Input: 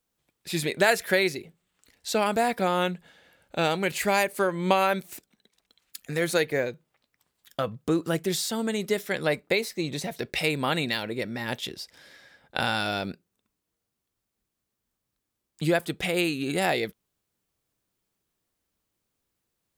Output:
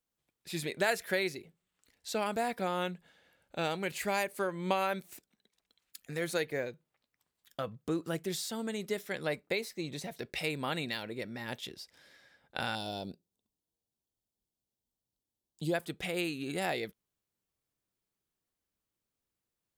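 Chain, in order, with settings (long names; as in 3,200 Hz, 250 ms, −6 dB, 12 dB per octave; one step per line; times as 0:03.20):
0:12.75–0:15.74: flat-topped bell 1,700 Hz −15 dB 1.3 octaves
level −8.5 dB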